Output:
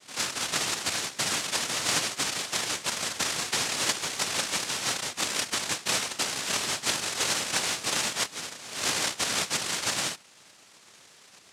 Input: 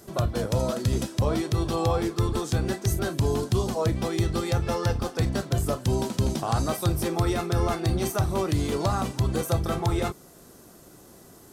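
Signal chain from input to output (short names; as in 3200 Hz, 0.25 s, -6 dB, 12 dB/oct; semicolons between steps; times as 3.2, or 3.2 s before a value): 8.22–8.76 BPF 770–5200 Hz; chorus voices 6, 0.48 Hz, delay 29 ms, depth 3.5 ms; noise vocoder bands 1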